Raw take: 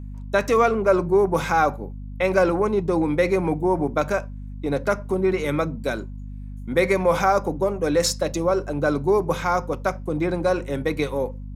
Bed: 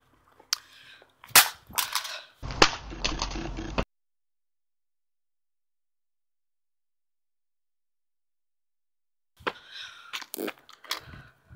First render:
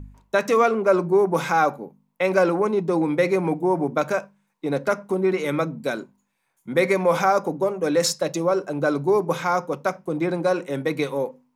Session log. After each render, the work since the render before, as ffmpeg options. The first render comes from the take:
-af "bandreject=f=50:t=h:w=4,bandreject=f=100:t=h:w=4,bandreject=f=150:t=h:w=4,bandreject=f=200:t=h:w=4,bandreject=f=250:t=h:w=4"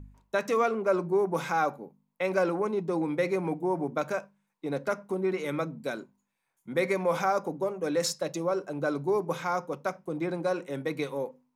-af "volume=-7.5dB"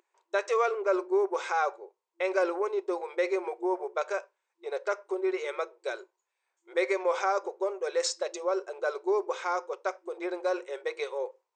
-af "afftfilt=real='re*between(b*sr/4096,340,8700)':imag='im*between(b*sr/4096,340,8700)':win_size=4096:overlap=0.75,adynamicequalizer=threshold=0.00794:dfrequency=690:dqfactor=3.8:tfrequency=690:tqfactor=3.8:attack=5:release=100:ratio=0.375:range=2:mode=cutabove:tftype=bell"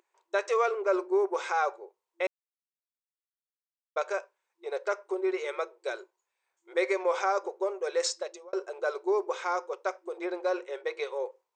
-filter_complex "[0:a]asettb=1/sr,asplit=3[a][b][c];[a]atrim=end=10.254[d];[b]atrim=start=10.25:end=11.12,asetpts=PTS-STARTPTS,afade=t=in:d=0.004:c=qsin,afade=t=out:st=0.866:d=0.004:c=qsin,lowpass=6.3k[e];[c]atrim=start=11.116[f];[d][e]acrossfade=d=0.004:c1=hsin:c2=qsin[g];[g][f]acrossfade=d=0.004:c1=qsin:c2=hsin,asplit=4[h][i][j][k];[h]atrim=end=2.27,asetpts=PTS-STARTPTS,afade=t=out:st=2.266:d=0.004:c=hsin[l];[i]atrim=start=2.27:end=3.96,asetpts=PTS-STARTPTS,volume=0[m];[j]atrim=start=3.96:end=8.53,asetpts=PTS-STARTPTS,afade=t=in:d=0.004:c=hsin,afade=t=out:st=4.13:d=0.44[n];[k]atrim=start=8.53,asetpts=PTS-STARTPTS,afade=t=in:d=0.004:c=hsin[o];[l][m][n][o]concat=n=4:v=0:a=1"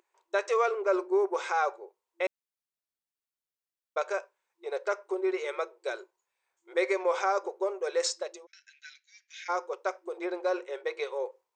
-filter_complex "[0:a]asplit=3[a][b][c];[a]afade=t=out:st=8.45:d=0.02[d];[b]asuperpass=centerf=3500:order=20:qfactor=0.66,afade=t=in:st=8.45:d=0.02,afade=t=out:st=9.48:d=0.02[e];[c]afade=t=in:st=9.48:d=0.02[f];[d][e][f]amix=inputs=3:normalize=0"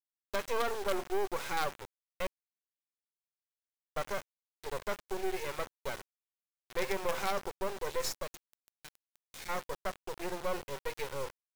-af "acrusher=bits=4:dc=4:mix=0:aa=0.000001,asoftclip=type=tanh:threshold=-21.5dB"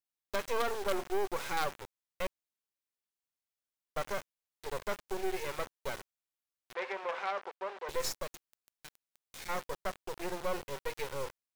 -filter_complex "[0:a]asettb=1/sr,asplit=3[a][b][c];[a]atrim=end=6.744[d];[b]atrim=start=6.74:end=7.89,asetpts=PTS-STARTPTS,afade=t=in:d=0.004:c=qsin,afade=t=out:st=1.146:d=0.004:c=qsin,highpass=560,lowpass=2.7k[e];[c]atrim=start=7.886[f];[d][e]acrossfade=d=0.004:c1=hsin:c2=qsin[g];[g][f]acrossfade=d=0.004:c1=qsin:c2=hsin"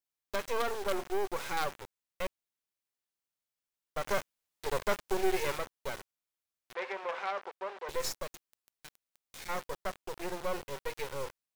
-filter_complex "[0:a]asettb=1/sr,asplit=3[a][b][c];[a]atrim=end=4.064[d];[b]atrim=start=4.06:end=5.58,asetpts=PTS-STARTPTS,afade=t=in:d=0.004:c=qsin,afade=t=out:st=1.516:d=0.004:c=qsin,acontrast=38[e];[c]atrim=start=5.576[f];[d][e]acrossfade=d=0.004:c1=hsin:c2=qsin[g];[g][f]acrossfade=d=0.004:c1=qsin:c2=hsin"

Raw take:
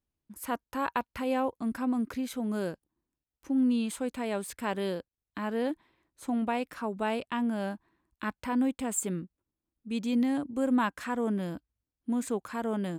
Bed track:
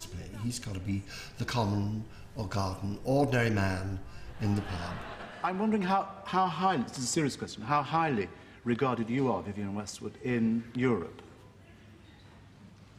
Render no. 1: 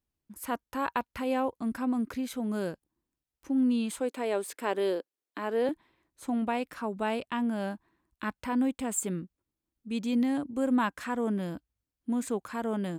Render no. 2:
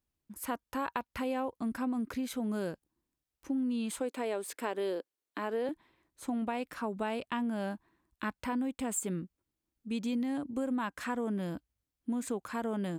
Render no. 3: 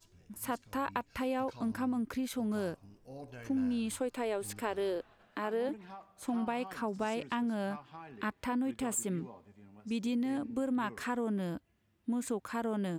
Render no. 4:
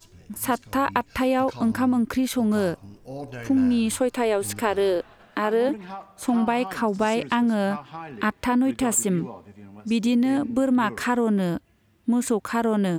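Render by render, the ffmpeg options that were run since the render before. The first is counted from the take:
-filter_complex "[0:a]asettb=1/sr,asplit=3[a][b][c];[a]atrim=end=4.004[d];[b]atrim=start=4:end=5.69,asetpts=PTS-STARTPTS,afade=t=in:d=0.004:c=qsin,afade=t=out:st=1.686:d=0.004:c=qsin,highpass=f=360:t=q:w=1.8[e];[c]atrim=start=5.686[f];[d][e]acrossfade=d=0.004:c1=hsin:c2=qsin[g];[g][f]acrossfade=d=0.004:c1=qsin:c2=hsin"
-af "acompressor=threshold=-30dB:ratio=6"
-filter_complex "[1:a]volume=-21dB[a];[0:a][a]amix=inputs=2:normalize=0"
-af "volume=12dB"

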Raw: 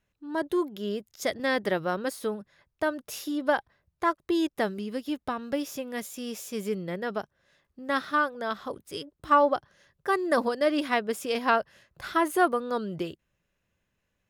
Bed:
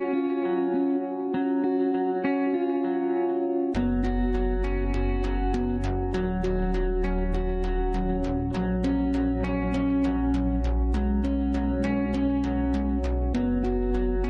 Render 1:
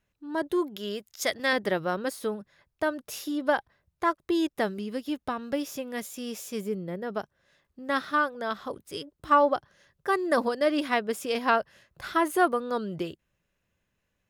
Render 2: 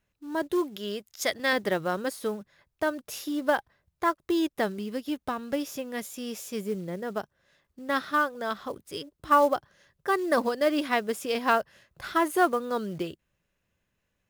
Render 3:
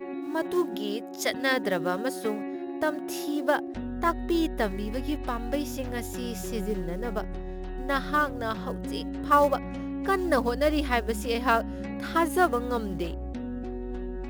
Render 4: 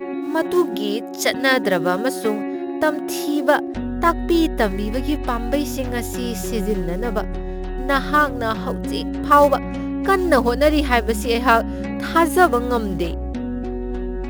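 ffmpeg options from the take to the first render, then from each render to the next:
-filter_complex "[0:a]asettb=1/sr,asplit=3[a][b][c];[a]atrim=end=0.764[d];[b]atrim=start=0.76:end=1.53,asetpts=PTS-STARTPTS,afade=t=in:d=0.004:c=qsin,afade=t=out:st=0.766:d=0.004:c=qsin,tiltshelf=f=700:g=-5[e];[c]atrim=start=1.526[f];[d][e]acrossfade=d=0.004:c1=hsin:c2=qsin[g];[g][f]acrossfade=d=0.004:c1=qsin:c2=hsin,asplit=3[h][i][j];[h]afade=t=out:st=6.6:d=0.02[k];[i]equalizer=f=3.5k:w=0.32:g=-8.5,afade=t=in:st=6.6:d=0.02,afade=t=out:st=7.15:d=0.02[l];[j]afade=t=in:st=7.15:d=0.02[m];[k][l][m]amix=inputs=3:normalize=0"
-af "acrusher=bits=6:mode=log:mix=0:aa=0.000001"
-filter_complex "[1:a]volume=-9.5dB[a];[0:a][a]amix=inputs=2:normalize=0"
-af "volume=8.5dB,alimiter=limit=-1dB:level=0:latency=1"

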